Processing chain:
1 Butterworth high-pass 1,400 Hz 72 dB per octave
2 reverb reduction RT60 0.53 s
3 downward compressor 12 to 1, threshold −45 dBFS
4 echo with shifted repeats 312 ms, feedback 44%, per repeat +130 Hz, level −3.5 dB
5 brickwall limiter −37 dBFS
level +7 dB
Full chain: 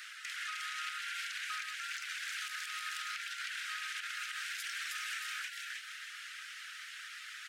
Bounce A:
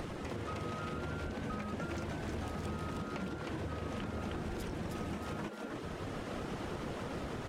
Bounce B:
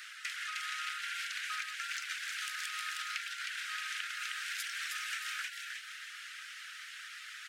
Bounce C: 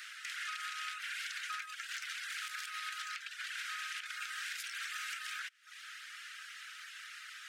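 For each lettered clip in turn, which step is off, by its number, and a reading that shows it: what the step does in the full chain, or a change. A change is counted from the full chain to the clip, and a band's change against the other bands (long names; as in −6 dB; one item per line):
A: 1, 1 kHz band +13.0 dB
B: 5, change in crest factor +7.0 dB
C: 4, change in crest factor +1.5 dB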